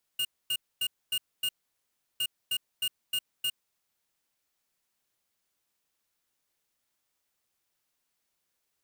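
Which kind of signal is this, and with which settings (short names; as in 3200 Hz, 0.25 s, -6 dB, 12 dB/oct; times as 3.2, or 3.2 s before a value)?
beep pattern square 2840 Hz, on 0.06 s, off 0.25 s, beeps 5, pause 0.71 s, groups 2, -29 dBFS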